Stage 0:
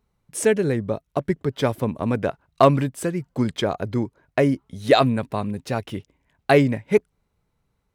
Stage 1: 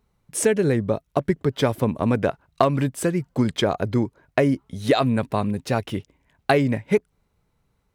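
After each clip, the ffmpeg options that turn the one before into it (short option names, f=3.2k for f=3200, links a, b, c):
-af "acompressor=threshold=-17dB:ratio=12,volume=3dB"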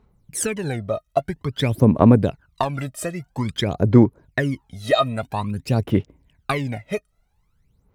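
-af "aphaser=in_gain=1:out_gain=1:delay=1.6:decay=0.79:speed=0.5:type=sinusoidal,volume=-4dB"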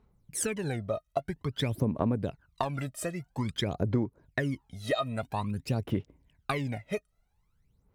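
-af "acompressor=threshold=-18dB:ratio=6,volume=-6.5dB"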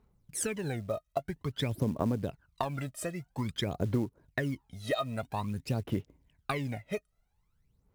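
-af "acrusher=bits=7:mode=log:mix=0:aa=0.000001,volume=-2dB"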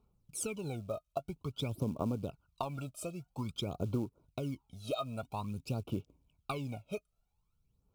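-af "asuperstop=centerf=1800:order=20:qfactor=2.4,volume=-4.5dB"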